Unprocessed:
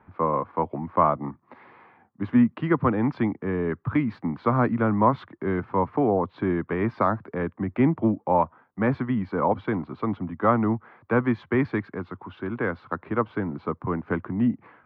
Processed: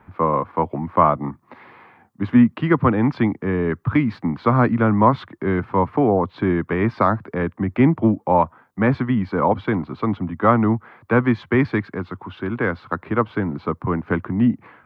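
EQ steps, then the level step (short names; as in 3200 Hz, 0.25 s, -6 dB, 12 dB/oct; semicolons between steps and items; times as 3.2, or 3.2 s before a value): low shelf 190 Hz +4.5 dB; high shelf 2600 Hz +8.5 dB; +3.5 dB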